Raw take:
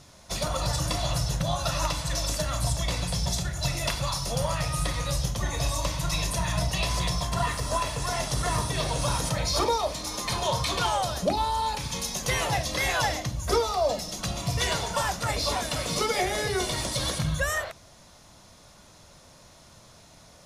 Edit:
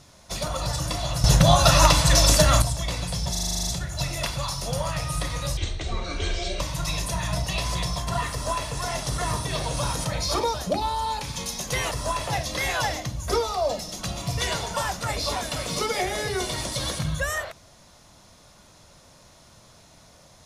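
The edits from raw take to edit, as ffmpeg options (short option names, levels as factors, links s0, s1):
-filter_complex "[0:a]asplit=17[s0][s1][s2][s3][s4][s5][s6][s7][s8][s9][s10][s11][s12][s13][s14][s15][s16];[s0]atrim=end=1.242[s17];[s1]atrim=start=1.238:end=2.622,asetpts=PTS-STARTPTS,volume=3.76[s18];[s2]atrim=start=2.618:end=3.352[s19];[s3]atrim=start=3.308:end=3.352[s20];[s4]atrim=start=3.308:end=3.352[s21];[s5]atrim=start=3.308:end=3.352[s22];[s6]atrim=start=3.308:end=3.352[s23];[s7]atrim=start=3.308:end=3.352[s24];[s8]atrim=start=3.308:end=3.352[s25];[s9]atrim=start=3.308:end=3.352[s26];[s10]atrim=start=3.308:end=3.352[s27];[s11]atrim=start=3.308:end=5.214[s28];[s12]atrim=start=5.21:end=5.85,asetpts=PTS-STARTPTS,asetrate=27342,aresample=44100[s29];[s13]atrim=start=5.846:end=9.792[s30];[s14]atrim=start=11.098:end=12.472[s31];[s15]atrim=start=7.568:end=7.932[s32];[s16]atrim=start=12.468[s33];[s17][s18]acrossfade=d=0.004:c1=hsin:c2=hsin[s34];[s34][s19]acrossfade=d=0.004:c1=hsin:c2=hsin[s35];[s35][s20]acrossfade=d=0.004:c1=hsin:c2=hsin[s36];[s36][s21]acrossfade=d=0.004:c1=hsin:c2=hsin[s37];[s37][s22]acrossfade=d=0.004:c1=hsin:c2=hsin[s38];[s38][s23]acrossfade=d=0.004:c1=hsin:c2=hsin[s39];[s39][s24]acrossfade=d=0.004:c1=hsin:c2=hsin[s40];[s40][s25]acrossfade=d=0.004:c1=hsin:c2=hsin[s41];[s41][s26]acrossfade=d=0.004:c1=hsin:c2=hsin[s42];[s42][s27]acrossfade=d=0.004:c1=hsin:c2=hsin[s43];[s43][s28]acrossfade=d=0.004:c1=hsin:c2=hsin[s44];[s44][s29]acrossfade=d=0.004:c1=hsin:c2=hsin[s45];[s45][s30]acrossfade=d=0.004:c1=hsin:c2=hsin[s46];[s46][s31]acrossfade=d=0.004:c1=hsin:c2=hsin[s47];[s47][s32]acrossfade=d=0.004:c1=hsin:c2=hsin[s48];[s48][s33]acrossfade=d=0.004:c1=hsin:c2=hsin"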